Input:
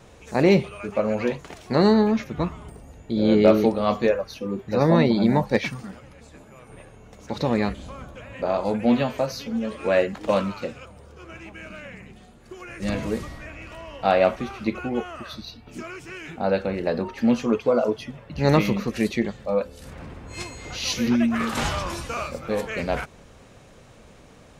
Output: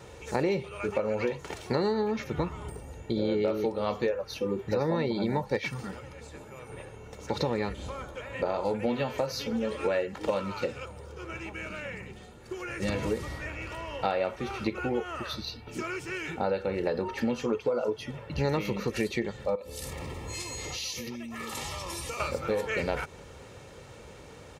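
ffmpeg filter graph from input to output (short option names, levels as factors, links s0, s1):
-filter_complex "[0:a]asettb=1/sr,asplit=3[s0][s1][s2];[s0]atrim=end=7.904[s3];[s1]atrim=start=7.9:end=8.34,asetpts=PTS-STARTPTS,afade=t=in:d=0.004:c=qsin,afade=t=out:st=0.436:d=0.004:c=qsin,equalizer=f=110:w=0.69:g=-7,bandreject=f=2700:w=18[s4];[s2]atrim=start=8.336[s5];[s3][s4]acrossfade=d=0.004:c1=hsin:c2=qsin[s6];[s6][s5]acrossfade=d=0.004:c1=qsin:c2=hsin,asettb=1/sr,asplit=3[s7][s8][s9];[s7]atrim=end=19.554[s10];[s8]atrim=start=19.55:end=22.2,asetpts=PTS-STARTPTS,afade=t=in:d=0.004:c=qsin,afade=t=out:st=2.646:d=0.004:c=qsin,highshelf=f=4500:g=11,acompressor=threshold=0.02:ratio=12:attack=3.2:release=140:knee=1:detection=peak,asuperstop=centerf=1500:order=8:qfactor=5.4[s11];[s9]atrim=start=22.196[s12];[s10][s11]acrossfade=d=0.004:c1=hsin:c2=qsin[s13];[s13][s12]acrossfade=d=0.004:c1=qsin:c2=hsin,aecho=1:1:2.2:0.42,acompressor=threshold=0.0447:ratio=6,highpass=58,volume=1.19"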